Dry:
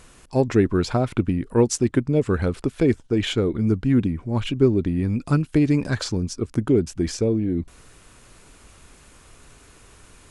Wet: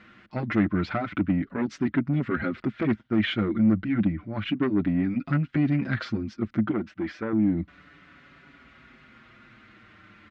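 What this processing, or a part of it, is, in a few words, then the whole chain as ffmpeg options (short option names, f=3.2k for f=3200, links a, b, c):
barber-pole flanger into a guitar amplifier: -filter_complex "[0:a]asplit=2[a][b];[b]adelay=6,afreqshift=-0.31[c];[a][c]amix=inputs=2:normalize=1,asoftclip=type=tanh:threshold=-20dB,highpass=100,equalizer=f=210:t=q:w=4:g=8,equalizer=f=300:t=q:w=4:g=5,equalizer=f=450:t=q:w=4:g=-9,equalizer=f=900:t=q:w=4:g=-5,equalizer=f=1.4k:t=q:w=4:g=8,equalizer=f=2k:t=q:w=4:g=9,lowpass=f=3.7k:w=0.5412,lowpass=f=3.7k:w=1.3066,asettb=1/sr,asplit=3[d][e][f];[d]atrim=end=6.714[g];[e]atrim=start=6.71:end=7.33,asetpts=PTS-STARTPTS,afade=t=in:d=0.004:c=qsin,afade=t=out:st=0.616:d=0.004:c=qsin,bass=f=250:g=-10,treble=f=4k:g=-7[h];[f]atrim=start=7.326[i];[g][h]acrossfade=d=0.004:c1=hsin:c2=qsin[j];[j][i]acrossfade=d=0.004:c1=qsin:c2=hsin"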